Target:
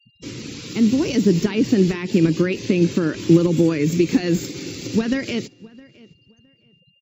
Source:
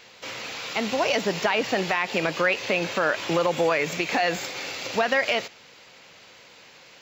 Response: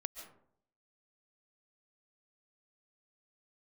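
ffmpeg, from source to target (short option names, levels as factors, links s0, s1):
-filter_complex "[0:a]bass=f=250:g=12,treble=f=4000:g=12,aeval=exprs='val(0)+0.00355*sin(2*PI*2800*n/s)':c=same,afftfilt=real='re*gte(hypot(re,im),0.0178)':imag='im*gte(hypot(re,im),0.0178)':win_size=1024:overlap=0.75,lowshelf=f=480:t=q:w=3:g=12,asplit=2[s0][s1];[s1]adelay=663,lowpass=f=3000:p=1,volume=0.075,asplit=2[s2][s3];[s3]adelay=663,lowpass=f=3000:p=1,volume=0.22[s4];[s2][s4]amix=inputs=2:normalize=0[s5];[s0][s5]amix=inputs=2:normalize=0,volume=0.422"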